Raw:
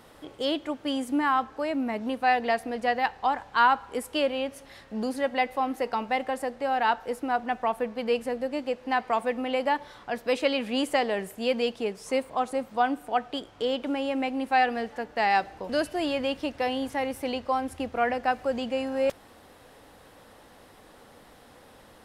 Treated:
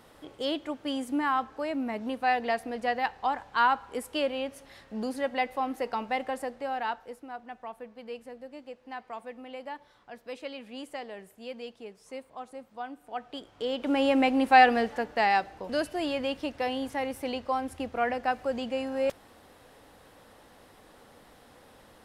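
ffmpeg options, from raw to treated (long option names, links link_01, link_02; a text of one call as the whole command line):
ffmpeg -i in.wav -af "volume=16dB,afade=type=out:start_time=6.36:duration=0.88:silence=0.281838,afade=type=in:start_time=12.98:duration=0.79:silence=0.281838,afade=type=in:start_time=13.77:duration=0.26:silence=0.398107,afade=type=out:start_time=14.71:duration=0.7:silence=0.421697" out.wav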